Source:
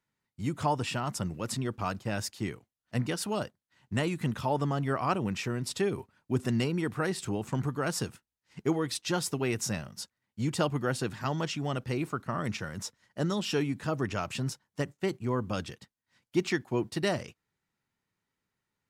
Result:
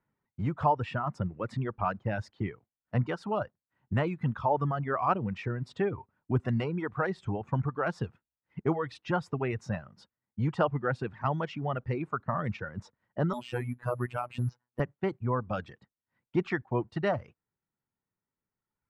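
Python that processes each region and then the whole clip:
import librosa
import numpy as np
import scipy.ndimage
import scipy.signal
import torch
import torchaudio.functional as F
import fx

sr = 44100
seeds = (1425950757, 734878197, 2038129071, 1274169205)

y = fx.chain(x, sr, fx.robotise(hz=122.0),
    fx.resample_bad(factor=4, down='filtered', up='zero_stuff'), at=(13.33, 14.8))
y = fx.dereverb_blind(y, sr, rt60_s=2.0)
y = scipy.signal.sosfilt(scipy.signal.butter(2, 1400.0, 'lowpass', fs=sr, output='sos'), y)
y = fx.dynamic_eq(y, sr, hz=290.0, q=0.89, threshold_db=-44.0, ratio=4.0, max_db=-8)
y = F.gain(torch.from_numpy(y), 6.0).numpy()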